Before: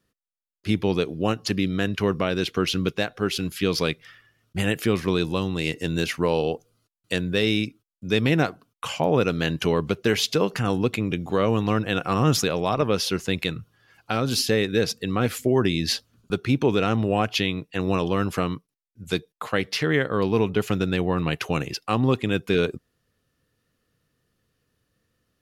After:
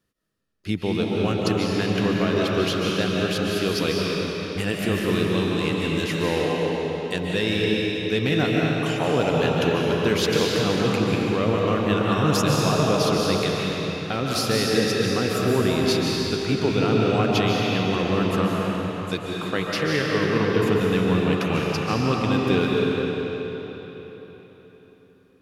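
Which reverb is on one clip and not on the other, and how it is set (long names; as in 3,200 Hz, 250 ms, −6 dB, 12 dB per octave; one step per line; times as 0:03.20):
comb and all-pass reverb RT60 4.2 s, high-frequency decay 0.85×, pre-delay 105 ms, DRR −3.5 dB
level −3 dB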